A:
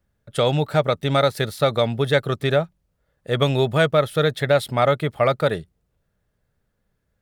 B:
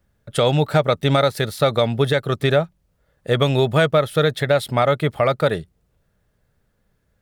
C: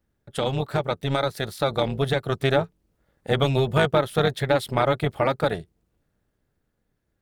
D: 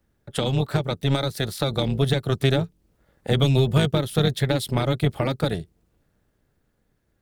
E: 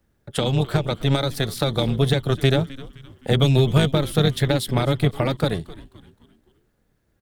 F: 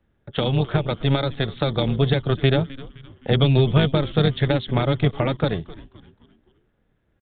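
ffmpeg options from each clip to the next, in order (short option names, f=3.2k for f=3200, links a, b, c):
-af "alimiter=limit=-12dB:level=0:latency=1:release=368,volume=5.5dB"
-af "dynaudnorm=f=380:g=9:m=7.5dB,tremolo=f=270:d=0.75,volume=-5dB"
-filter_complex "[0:a]acrossover=split=350|3000[a][b][c];[b]acompressor=threshold=-33dB:ratio=6[d];[a][d][c]amix=inputs=3:normalize=0,volume=5dB"
-filter_complex "[0:a]asplit=5[a][b][c][d][e];[b]adelay=259,afreqshift=-130,volume=-18dB[f];[c]adelay=518,afreqshift=-260,volume=-25.3dB[g];[d]adelay=777,afreqshift=-390,volume=-32.7dB[h];[e]adelay=1036,afreqshift=-520,volume=-40dB[i];[a][f][g][h][i]amix=inputs=5:normalize=0,volume=2dB"
-af "aresample=8000,aresample=44100"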